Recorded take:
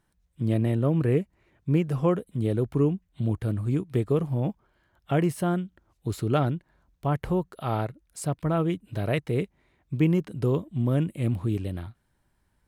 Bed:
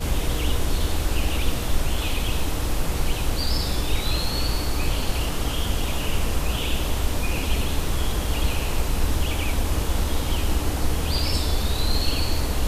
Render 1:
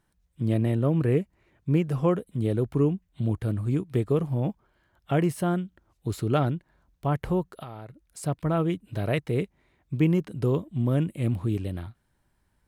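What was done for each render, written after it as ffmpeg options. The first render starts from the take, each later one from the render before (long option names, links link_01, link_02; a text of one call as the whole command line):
ffmpeg -i in.wav -filter_complex "[0:a]asettb=1/sr,asplit=3[link_01][link_02][link_03];[link_01]atrim=end=7.634[link_04];[link_02]atrim=start=7.63:end=8.23,asetpts=PTS-STARTPTS,afade=type=in:duration=0.004:curve=qsin,afade=type=out:start_time=0.596:duration=0.004:curve=qsin,acompressor=threshold=-37dB:ratio=8:attack=3.2:release=140:knee=1:detection=peak[link_05];[link_03]atrim=start=8.226[link_06];[link_04][link_05]acrossfade=duration=0.004:curve1=hsin:curve2=qsin[link_07];[link_07][link_06]acrossfade=duration=0.004:curve1=qsin:curve2=hsin" out.wav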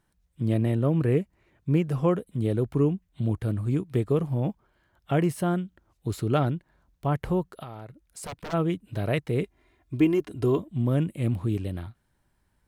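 ffmpeg -i in.wav -filter_complex "[0:a]asplit=3[link_01][link_02][link_03];[link_01]afade=type=out:start_time=7.64:duration=0.02[link_04];[link_02]aeval=exprs='0.0282*(abs(mod(val(0)/0.0282+3,4)-2)-1)':channel_layout=same,afade=type=in:start_time=7.64:duration=0.02,afade=type=out:start_time=8.52:duration=0.02[link_05];[link_03]afade=type=in:start_time=8.52:duration=0.02[link_06];[link_04][link_05][link_06]amix=inputs=3:normalize=0,asettb=1/sr,asplit=3[link_07][link_08][link_09];[link_07]atrim=end=9.434[link_10];[link_08]atrim=start=9.43:end=10.59,asetpts=PTS-STARTPTS,afade=type=in:duration=0.004:curve=qsin,afade=type=out:start_time=1.156:duration=0.004:curve=qsin,aecho=1:1:2.9:0.72,atrim=end_sample=51156[link_11];[link_09]atrim=start=10.586[link_12];[link_10][link_11]acrossfade=duration=0.004:curve1=hsin:curve2=qsin[link_13];[link_13][link_12]acrossfade=duration=0.004:curve1=qsin:curve2=hsin" out.wav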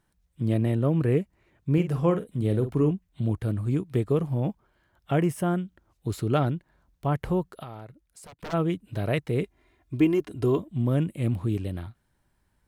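ffmpeg -i in.wav -filter_complex "[0:a]asettb=1/sr,asplit=3[link_01][link_02][link_03];[link_01]atrim=end=1.734[link_04];[link_02]atrim=start=1.73:end=2.91,asetpts=PTS-STARTPTS,afade=type=in:duration=0.004:curve=qsin,afade=type=out:start_time=1.176:duration=0.004:curve=qsin,asplit=2[link_05][link_06];[link_06]adelay=47,volume=-10dB[link_07];[link_05][link_07]amix=inputs=2:normalize=0,atrim=end_sample=52038[link_08];[link_03]atrim=start=2.906[link_09];[link_04][link_08]acrossfade=duration=0.004:curve1=hsin:curve2=qsin[link_10];[link_10][link_09]acrossfade=duration=0.004:curve1=qsin:curve2=hsin,asettb=1/sr,asplit=3[link_11][link_12][link_13];[link_11]atrim=end=5.164[link_14];[link_12]atrim=start=5.16:end=5.6,asetpts=PTS-STARTPTS,afade=type=in:duration=0.004:curve=qsin,afade=type=out:start_time=0.436:duration=0.004:curve=qsin,equalizer=frequency=4200:width_type=o:width=0.3:gain=-11[link_15];[link_13]atrim=start=5.596[link_16];[link_14][link_15]acrossfade=duration=0.004:curve1=hsin:curve2=qsin[link_17];[link_17][link_16]acrossfade=duration=0.004:curve1=qsin:curve2=hsin,asplit=2[link_18][link_19];[link_18]atrim=end=8.39,asetpts=PTS-STARTPTS,afade=type=out:start_time=7.75:duration=0.64:silence=0.177828[link_20];[link_19]atrim=start=8.39,asetpts=PTS-STARTPTS,afade=type=in:duration=0.004:curve=hsin:silence=0.177828[link_21];[link_20][link_21]concat=n=2:v=0:a=1" out.wav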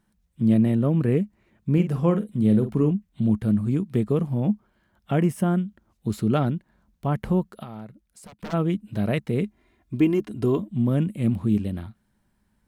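ffmpeg -i in.wav -af "equalizer=frequency=210:width=4.4:gain=14" out.wav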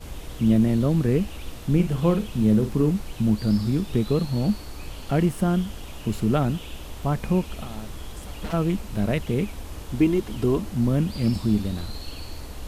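ffmpeg -i in.wav -i bed.wav -filter_complex "[1:a]volume=-13dB[link_01];[0:a][link_01]amix=inputs=2:normalize=0" out.wav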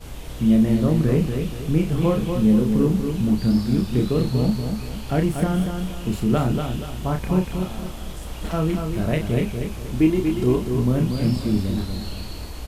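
ffmpeg -i in.wav -filter_complex "[0:a]asplit=2[link_01][link_02];[link_02]adelay=32,volume=-5dB[link_03];[link_01][link_03]amix=inputs=2:normalize=0,aecho=1:1:238|476|714|952|1190:0.501|0.195|0.0762|0.0297|0.0116" out.wav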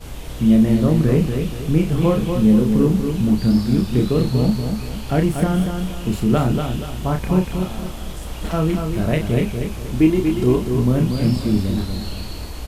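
ffmpeg -i in.wav -af "volume=3dB" out.wav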